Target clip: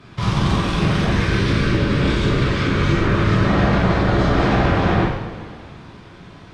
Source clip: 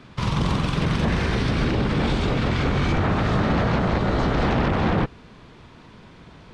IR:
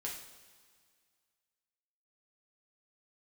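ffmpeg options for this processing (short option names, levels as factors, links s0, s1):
-filter_complex "[0:a]asettb=1/sr,asplit=3[s0][s1][s2];[s0]atrim=end=1.114[s3];[s1]atrim=start=1.11:end=3.46,asetpts=PTS-STARTPTS,afade=t=in:d=0.004:c=qsin,afade=t=out:st=2.346:d=0.004:c=qsin,equalizer=f=750:w=4.7:g=-13[s4];[s2]atrim=start=3.456[s5];[s3][s4]acrossfade=d=0.004:c1=hsin:c2=qsin[s6];[s6][s5]acrossfade=d=0.004:c1=qsin:c2=hsin[s7];[1:a]atrim=start_sample=2205,asetrate=33957,aresample=44100[s8];[s7][s8]afir=irnorm=-1:irlink=0,volume=1.41"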